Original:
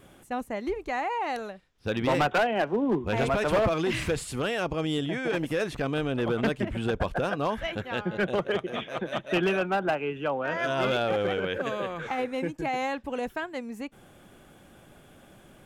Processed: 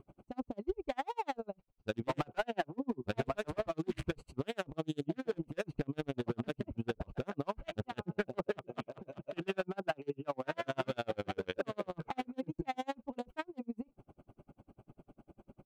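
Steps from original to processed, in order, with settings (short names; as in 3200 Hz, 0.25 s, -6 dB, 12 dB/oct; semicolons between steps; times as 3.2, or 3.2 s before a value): Wiener smoothing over 25 samples; notch 500 Hz, Q 12; compressor 4:1, threshold -30 dBFS, peak gain reduction 8 dB; dB-linear tremolo 10 Hz, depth 40 dB; gain +2.5 dB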